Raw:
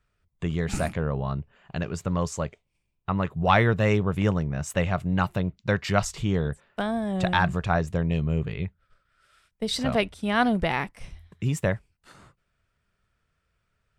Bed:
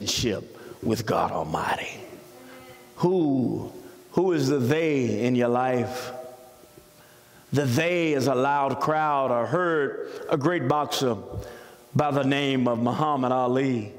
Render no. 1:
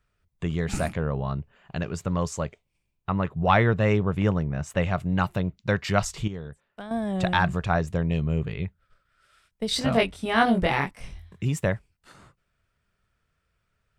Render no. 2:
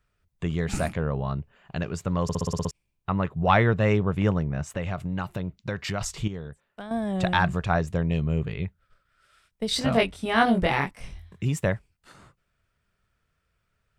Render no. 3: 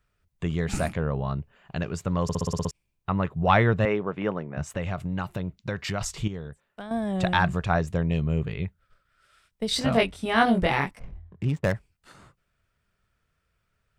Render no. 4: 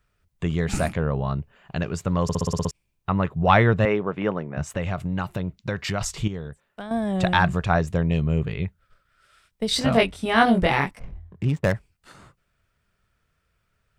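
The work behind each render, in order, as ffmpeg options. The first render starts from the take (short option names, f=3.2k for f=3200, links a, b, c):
-filter_complex "[0:a]asettb=1/sr,asplit=3[a][b][c];[a]atrim=end=3.124[d];[b]atrim=start=3.12:end=4.82,asetpts=PTS-STARTPTS,afade=t=in:d=0.004:c=qsin,afade=t=out:st=1.696:d=0.004:c=qsin,aemphasis=mode=reproduction:type=cd[e];[c]atrim=start=4.816[f];[d][e]acrossfade=d=0.004:c1=hsin:c2=qsin[g];[g][f]acrossfade=d=0.004:c1=qsin:c2=hsin,asettb=1/sr,asplit=3[h][i][j];[h]atrim=end=9.694[k];[i]atrim=start=9.69:end=11.45,asetpts=PTS-STARTPTS,afade=t=in:d=0.004:c=qsin,afade=t=out:st=1.756:d=0.004:c=qsin,asplit=2[l][m];[m]adelay=22,volume=-2dB[n];[l][n]amix=inputs=2:normalize=0,atrim=end_sample=77616[o];[j]atrim=start=11.446[p];[k][o]acrossfade=d=0.004:c1=hsin:c2=qsin[q];[q][p]acrossfade=d=0.004:c1=qsin:c2=hsin,asplit=3[r][s][t];[r]atrim=end=6.282[u];[s]atrim=start=6.278:end=6.912,asetpts=PTS-STARTPTS,volume=-11dB[v];[t]atrim=start=6.908[w];[u][v]acrossfade=d=0.004:c1=hsin:c2=hsin[x];[x][w]acrossfade=d=0.004:c1=hsin:c2=hsin"
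-filter_complex "[0:a]asettb=1/sr,asplit=3[a][b][c];[a]atrim=end=4.704[d];[b]atrim=start=4.7:end=6.01,asetpts=PTS-STARTPTS,afade=t=in:d=0.004:c=qsin,afade=t=out:st=1.306:d=0.004:c=qsin,acompressor=threshold=-25dB:ratio=4:attack=3.2:release=140:knee=1:detection=peak[e];[c]atrim=start=6.006[f];[d][e]acrossfade=d=0.004:c1=hsin:c2=qsin[g];[g][f]acrossfade=d=0.004:c1=qsin:c2=hsin,asplit=9[h][i][j][k][l][m][n][o][p];[h]atrim=end=2.292[q];[i]atrim=start=2.228:end=2.292[r];[j]atrim=start=2.228:end=2.292[s];[k]atrim=start=2.228:end=2.292[t];[l]atrim=start=2.228:end=2.292[u];[m]atrim=start=2.228:end=2.292[v];[n]atrim=start=2.228:end=2.292[w];[o]atrim=start=2.228:end=2.292[x];[p]atrim=start=2.708[y];[q][r]acrossfade=d=0.004:c1=hsin:c2=hsin[z];[z][s]acrossfade=d=0.004:c1=hsin:c2=hsin[aa];[aa][t]acrossfade=d=0.004:c1=hsin:c2=hsin[ab];[ab][u]acrossfade=d=0.004:c1=hsin:c2=hsin[ac];[ac][v]acrossfade=d=0.004:c1=hsin:c2=hsin[ad];[ad][w]acrossfade=d=0.004:c1=hsin:c2=hsin[ae];[ae][x]acrossfade=d=0.004:c1=hsin:c2=hsin[af];[af][y]acrossfade=d=0.004:c1=hsin:c2=hsin"
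-filter_complex "[0:a]asettb=1/sr,asplit=3[a][b][c];[a]atrim=end=3.854[d];[b]atrim=start=3.85:end=4.57,asetpts=PTS-STARTPTS,afade=t=in:d=0.004:c=qsin,afade=t=out:st=0.716:d=0.004:c=qsin,highpass=270,lowpass=2.8k[e];[c]atrim=start=4.566[f];[d][e]acrossfade=d=0.004:c1=hsin:c2=qsin[g];[g][f]acrossfade=d=0.004:c1=qsin:c2=hsin,asplit=3[h][i][j];[h]afade=t=out:st=10.98:d=0.02[k];[i]adynamicsmooth=sensitivity=6.5:basefreq=720,afade=t=in:st=10.98:d=0.02,afade=t=out:st=11.73:d=0.02[l];[j]afade=t=in:st=11.73:d=0.02[m];[k][l][m]amix=inputs=3:normalize=0"
-af "volume=3dB"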